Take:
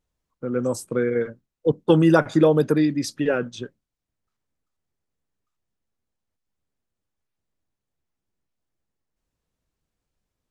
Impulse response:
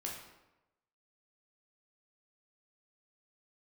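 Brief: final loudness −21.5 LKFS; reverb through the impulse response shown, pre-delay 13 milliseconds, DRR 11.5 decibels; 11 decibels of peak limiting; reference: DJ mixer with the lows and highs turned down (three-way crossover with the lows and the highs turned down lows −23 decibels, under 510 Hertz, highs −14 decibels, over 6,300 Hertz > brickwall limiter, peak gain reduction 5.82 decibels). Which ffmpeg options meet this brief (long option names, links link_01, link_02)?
-filter_complex "[0:a]alimiter=limit=-15.5dB:level=0:latency=1,asplit=2[link_01][link_02];[1:a]atrim=start_sample=2205,adelay=13[link_03];[link_02][link_03]afir=irnorm=-1:irlink=0,volume=-11.5dB[link_04];[link_01][link_04]amix=inputs=2:normalize=0,acrossover=split=510 6300:gain=0.0708 1 0.2[link_05][link_06][link_07];[link_05][link_06][link_07]amix=inputs=3:normalize=0,volume=14dB,alimiter=limit=-10dB:level=0:latency=1"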